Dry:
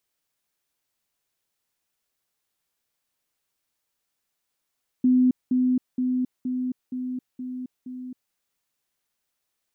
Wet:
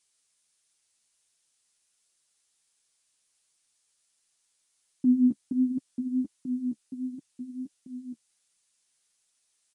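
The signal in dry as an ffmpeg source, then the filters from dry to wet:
-f lavfi -i "aevalsrc='pow(10,(-15-3*floor(t/0.47))/20)*sin(2*PI*253*t)*clip(min(mod(t,0.47),0.27-mod(t,0.47))/0.005,0,1)':duration=3.29:sample_rate=44100"
-af "crystalizer=i=5:c=0,aresample=22050,aresample=44100,flanger=delay=5.3:depth=9.4:regen=13:speed=1.4:shape=triangular"

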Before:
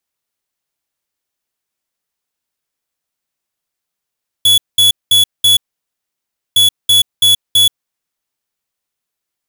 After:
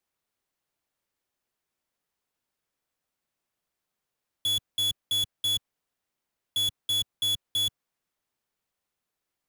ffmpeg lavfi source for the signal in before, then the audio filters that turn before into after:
-f lavfi -i "aevalsrc='0.376*(2*lt(mod(3400*t,1),0.5)-1)*clip(min(mod(mod(t,2.11),0.33),0.13-mod(mod(t,2.11),0.33))/0.005,0,1)*lt(mod(t,2.11),1.32)':duration=4.22:sample_rate=44100"
-filter_complex "[0:a]highshelf=frequency=2500:gain=-7.5,acrossover=split=120|1100[link_01][link_02][link_03];[link_02]acrusher=bits=2:mode=log:mix=0:aa=0.000001[link_04];[link_01][link_04][link_03]amix=inputs=3:normalize=0,asoftclip=type=tanh:threshold=-24.5dB"

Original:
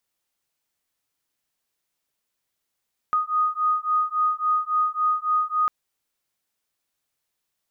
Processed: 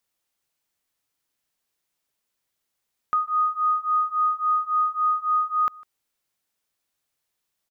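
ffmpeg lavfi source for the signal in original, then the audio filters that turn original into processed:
-f lavfi -i "aevalsrc='0.0708*(sin(2*PI*1240*t)+sin(2*PI*1243.6*t))':duration=2.55:sample_rate=44100"
-af "aecho=1:1:152:0.0668"

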